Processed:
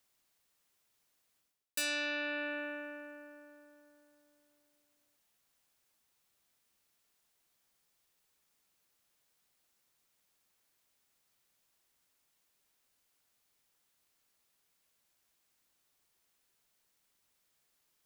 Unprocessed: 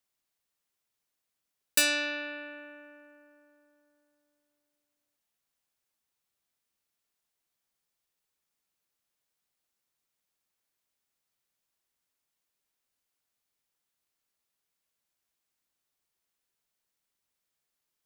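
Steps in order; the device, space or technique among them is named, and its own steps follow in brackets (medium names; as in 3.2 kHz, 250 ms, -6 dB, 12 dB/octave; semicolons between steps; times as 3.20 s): compression on the reversed sound (reverse; compression 6:1, threshold -41 dBFS, peak gain reduction 21 dB; reverse); trim +7 dB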